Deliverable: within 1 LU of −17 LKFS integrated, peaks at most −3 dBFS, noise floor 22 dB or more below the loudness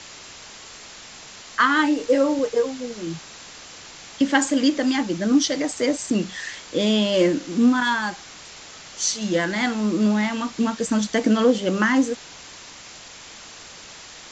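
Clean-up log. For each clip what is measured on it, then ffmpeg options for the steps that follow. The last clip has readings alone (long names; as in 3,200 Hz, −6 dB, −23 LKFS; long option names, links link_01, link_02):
background noise floor −42 dBFS; target noise floor −44 dBFS; integrated loudness −21.5 LKFS; sample peak −4.0 dBFS; target loudness −17.0 LKFS
→ -af "afftdn=noise_reduction=6:noise_floor=-42"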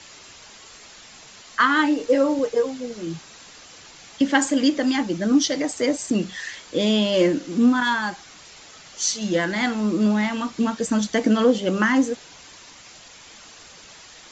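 background noise floor −46 dBFS; integrated loudness −21.5 LKFS; sample peak −4.0 dBFS; target loudness −17.0 LKFS
→ -af "volume=4.5dB,alimiter=limit=-3dB:level=0:latency=1"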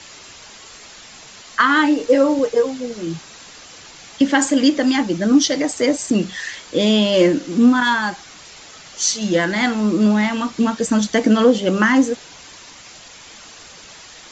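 integrated loudness −17.0 LKFS; sample peak −3.0 dBFS; background noise floor −41 dBFS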